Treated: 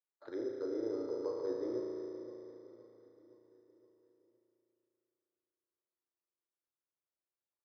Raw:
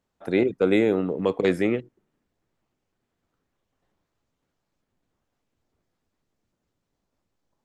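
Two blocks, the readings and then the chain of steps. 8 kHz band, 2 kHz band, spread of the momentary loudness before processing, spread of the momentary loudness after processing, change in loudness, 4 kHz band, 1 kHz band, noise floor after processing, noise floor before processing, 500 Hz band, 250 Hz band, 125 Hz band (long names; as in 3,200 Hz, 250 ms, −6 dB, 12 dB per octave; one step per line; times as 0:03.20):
can't be measured, below −25 dB, 5 LU, 16 LU, −16.5 dB, below −20 dB, −17.5 dB, below −85 dBFS, −80 dBFS, −13.5 dB, −16.5 dB, −27.0 dB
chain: treble cut that deepens with the level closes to 730 Hz, closed at −20.5 dBFS
noise gate −51 dBFS, range −18 dB
low-shelf EQ 410 Hz −5.5 dB
reversed playback
downward compressor, threshold −29 dBFS, peak gain reduction 10 dB
reversed playback
phaser with its sweep stopped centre 710 Hz, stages 6
on a send: repeating echo 517 ms, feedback 54%, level −15.5 dB
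on the sum: spring reverb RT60 3.2 s, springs 35 ms, chirp 50 ms, DRR 0 dB
bad sample-rate conversion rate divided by 8×, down none, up hold
loudspeaker in its box 150–3,700 Hz, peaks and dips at 220 Hz −9 dB, 440 Hz −5 dB, 670 Hz +9 dB
level −3.5 dB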